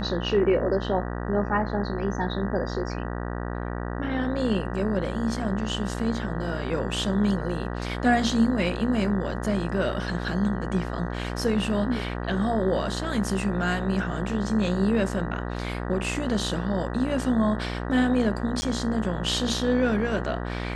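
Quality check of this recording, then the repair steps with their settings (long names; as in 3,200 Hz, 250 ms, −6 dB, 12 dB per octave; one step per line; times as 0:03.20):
mains buzz 60 Hz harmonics 32 −31 dBFS
0:18.61–0:18.62: drop-out 10 ms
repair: hum removal 60 Hz, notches 32
repair the gap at 0:18.61, 10 ms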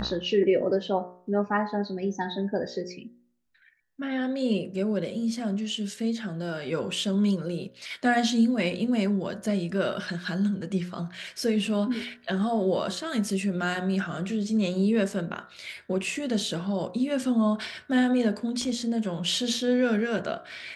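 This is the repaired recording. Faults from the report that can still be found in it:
none of them is left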